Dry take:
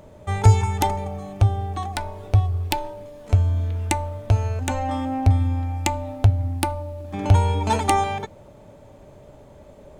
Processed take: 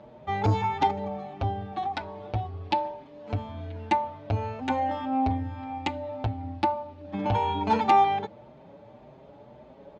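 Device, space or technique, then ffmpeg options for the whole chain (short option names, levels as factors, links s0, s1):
barber-pole flanger into a guitar amplifier: -filter_complex "[0:a]asplit=2[s0][s1];[s1]adelay=6.5,afreqshift=1.8[s2];[s0][s2]amix=inputs=2:normalize=1,asoftclip=type=tanh:threshold=0.237,highpass=86,equalizer=f=90:t=q:w=4:g=-10,equalizer=f=230:t=q:w=4:g=3,equalizer=f=830:t=q:w=4:g=5,lowpass=f=4400:w=0.5412,lowpass=f=4400:w=1.3066"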